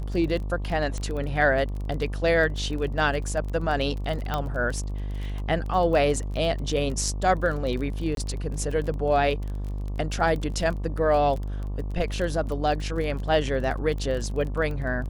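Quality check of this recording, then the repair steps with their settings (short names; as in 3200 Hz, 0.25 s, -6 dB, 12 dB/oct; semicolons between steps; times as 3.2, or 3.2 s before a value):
buzz 50 Hz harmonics 24 -30 dBFS
crackle 23/s -31 dBFS
0.98 pop -20 dBFS
4.34 pop -13 dBFS
8.15–8.17 gap 22 ms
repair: de-click; de-hum 50 Hz, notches 24; interpolate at 8.15, 22 ms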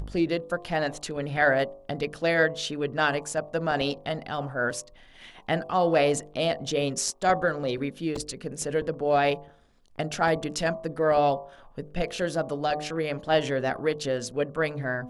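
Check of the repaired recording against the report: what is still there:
4.34 pop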